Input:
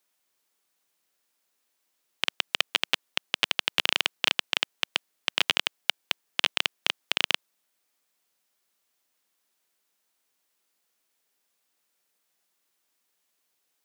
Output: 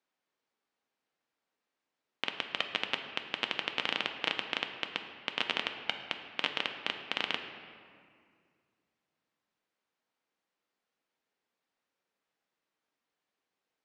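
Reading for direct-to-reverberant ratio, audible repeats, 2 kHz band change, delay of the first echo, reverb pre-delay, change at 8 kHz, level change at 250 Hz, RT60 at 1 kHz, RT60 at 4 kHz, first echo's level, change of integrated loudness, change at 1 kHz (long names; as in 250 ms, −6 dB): 5.0 dB, no echo audible, −6.0 dB, no echo audible, 4 ms, −17.0 dB, −1.0 dB, 2.0 s, 1.3 s, no echo audible, −7.5 dB, −3.0 dB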